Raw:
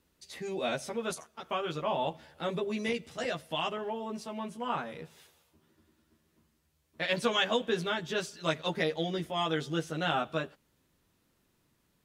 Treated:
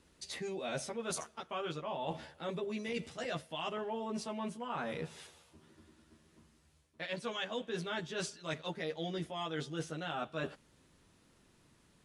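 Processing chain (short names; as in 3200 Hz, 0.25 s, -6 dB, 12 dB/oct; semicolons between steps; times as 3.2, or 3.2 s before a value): reverse; compressor 16:1, threshold -41 dBFS, peak gain reduction 18.5 dB; reverse; gain +6 dB; AAC 96 kbps 24000 Hz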